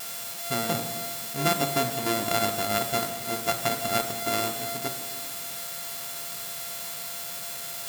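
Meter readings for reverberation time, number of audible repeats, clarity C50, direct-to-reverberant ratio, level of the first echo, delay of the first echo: 1.7 s, no echo audible, 7.5 dB, 6.0 dB, no echo audible, no echo audible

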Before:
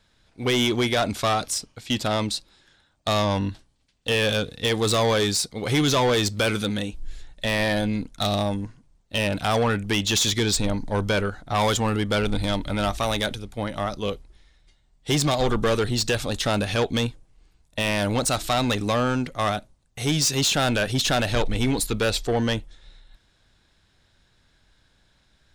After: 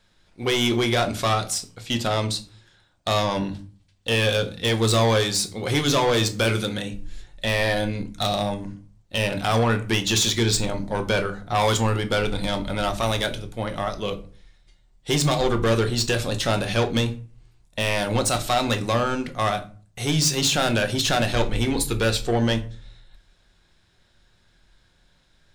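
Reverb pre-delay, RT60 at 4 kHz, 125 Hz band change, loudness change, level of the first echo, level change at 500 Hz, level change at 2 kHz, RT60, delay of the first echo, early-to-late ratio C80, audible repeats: 5 ms, 0.25 s, +1.5 dB, +1.0 dB, no echo audible, +1.0 dB, +1.0 dB, 0.40 s, no echo audible, 20.5 dB, no echo audible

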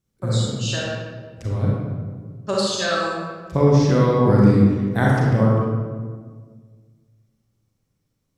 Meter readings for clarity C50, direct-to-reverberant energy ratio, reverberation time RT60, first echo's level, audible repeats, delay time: −2.5 dB, −4.5 dB, 1.7 s, no echo audible, no echo audible, no echo audible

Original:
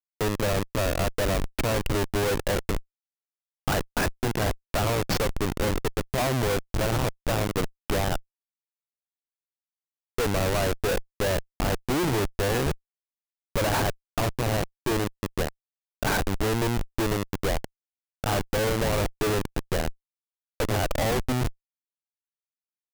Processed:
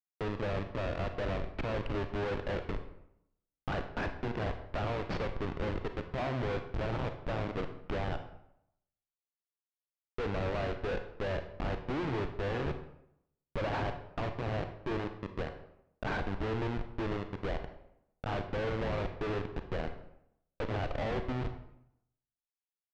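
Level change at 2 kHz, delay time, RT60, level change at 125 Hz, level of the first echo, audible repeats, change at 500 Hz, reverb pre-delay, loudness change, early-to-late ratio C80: −9.5 dB, no echo audible, 0.75 s, −8.5 dB, no echo audible, no echo audible, −8.5 dB, 29 ms, −9.0 dB, 12.0 dB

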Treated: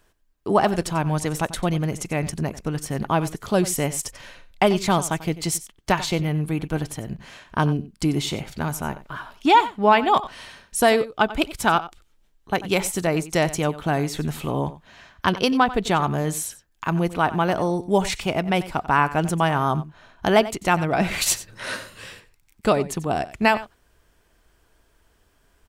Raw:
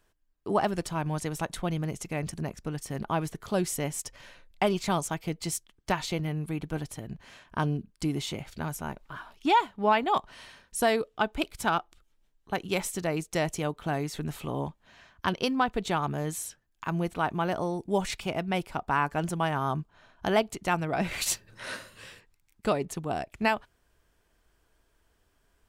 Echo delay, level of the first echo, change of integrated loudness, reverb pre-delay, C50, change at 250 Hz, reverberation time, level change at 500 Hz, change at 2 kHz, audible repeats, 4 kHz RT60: 92 ms, −16.0 dB, +7.5 dB, no reverb audible, no reverb audible, +7.5 dB, no reverb audible, +7.5 dB, +7.5 dB, 1, no reverb audible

